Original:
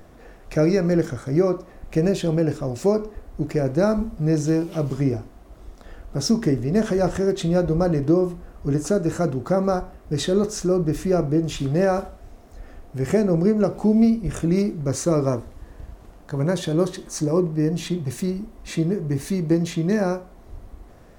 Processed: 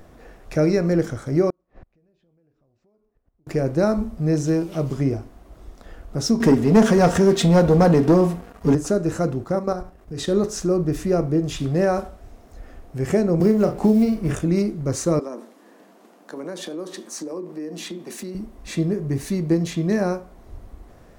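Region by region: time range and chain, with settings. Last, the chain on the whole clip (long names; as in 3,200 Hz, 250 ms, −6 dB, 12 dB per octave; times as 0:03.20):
0:01.50–0:03.47: downward compressor 4 to 1, threshold −30 dBFS + gate with flip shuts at −32 dBFS, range −32 dB + high-frequency loss of the air 180 metres
0:06.40–0:08.75: high-pass filter 82 Hz + comb filter 4.3 ms, depth 52% + leveller curve on the samples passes 2
0:09.44–0:10.28: output level in coarse steps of 10 dB + double-tracking delay 39 ms −14 dB
0:13.40–0:14.35: mu-law and A-law mismatch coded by A + double-tracking delay 37 ms −7.5 dB + multiband upward and downward compressor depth 100%
0:15.19–0:18.35: Butterworth high-pass 200 Hz 48 dB per octave + downward compressor 4 to 1, threshold −29 dBFS
whole clip: no processing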